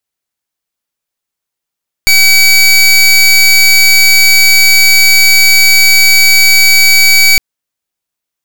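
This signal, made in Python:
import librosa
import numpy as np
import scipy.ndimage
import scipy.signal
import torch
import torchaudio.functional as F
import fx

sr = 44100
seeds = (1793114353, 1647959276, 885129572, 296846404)

y = fx.pulse(sr, length_s=5.31, hz=2280.0, level_db=-5.0, duty_pct=22)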